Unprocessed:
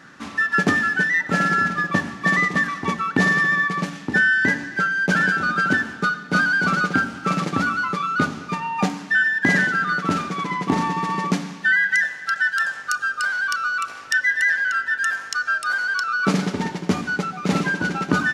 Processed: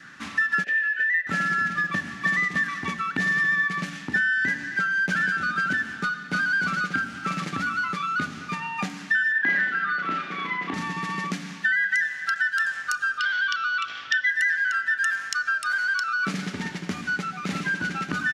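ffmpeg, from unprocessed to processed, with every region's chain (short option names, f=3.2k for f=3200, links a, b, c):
-filter_complex "[0:a]asettb=1/sr,asplit=3[a][b][c];[a]atrim=end=0.644[d];[b]atrim=start=0.64:end=1.27,asetpts=PTS-STARTPTS,afade=t=in:d=0.004:c=qsin,afade=t=out:st=0.626:d=0.004:c=qsin,tiltshelf=f=750:g=-8,acrusher=bits=7:mix=0:aa=0.5,asplit=3[e][f][g];[e]bandpass=f=530:t=q:w=8,volume=0dB[h];[f]bandpass=f=1.84k:t=q:w=8,volume=-6dB[i];[g]bandpass=f=2.48k:t=q:w=8,volume=-9dB[j];[h][i][j]amix=inputs=3:normalize=0[k];[c]atrim=start=1.266[l];[d][k]acrossfade=d=0.004:c1=hsin:c2=qsin[m];[m][l]acrossfade=d=0.004:c1=qsin:c2=hsin,asettb=1/sr,asplit=3[n][o][p];[n]atrim=end=9.324[q];[o]atrim=start=9.32:end=10.74,asetpts=PTS-STARTPTS,afade=t=in:d=0.004:c=qsin,afade=t=out:st=1.416:d=0.004:c=qsin,acrossover=split=8300[r][s];[s]acompressor=threshold=-54dB:ratio=4:attack=1:release=60[t];[r][t]amix=inputs=2:normalize=0,acrossover=split=250 3800:gain=0.178 1 0.112[u][v][w];[u][v][w]amix=inputs=3:normalize=0,asplit=2[x][y];[y]adelay=33,volume=-3.5dB[z];[x][z]amix=inputs=2:normalize=0,atrim=end_sample=62622[aa];[p]atrim=start=10.736[ab];[q][aa]acrossfade=d=0.004:c1=hsin:c2=qsin[ac];[ac][ab]acrossfade=d=0.004:c1=qsin:c2=hsin,asettb=1/sr,asplit=3[ad][ae][af];[ad]atrim=end=13.184[ag];[ae]atrim=start=13.18:end=14.3,asetpts=PTS-STARTPTS,afade=t=in:d=0.004:c=qsin,afade=t=out:st=1.116:d=0.004:c=qsin,lowpass=f=5.5k:w=0.5412,lowpass=f=5.5k:w=1.3066,equalizer=f=3.3k:t=o:w=0.27:g=14.5[ah];[af]atrim=start=14.296[ai];[ag][ah]acrossfade=d=0.004:c1=hsin:c2=qsin[aj];[aj][ai]acrossfade=d=0.004:c1=qsin:c2=hsin,adynamicequalizer=threshold=0.00794:dfrequency=940:dqfactor=4.5:tfrequency=940:tqfactor=4.5:attack=5:release=100:ratio=0.375:range=3:mode=cutabove:tftype=bell,acompressor=threshold=-24dB:ratio=3,firequalizer=gain_entry='entry(190,0);entry(450,-6);entry(1700,6);entry(4600,3)':delay=0.05:min_phase=1,volume=-3dB"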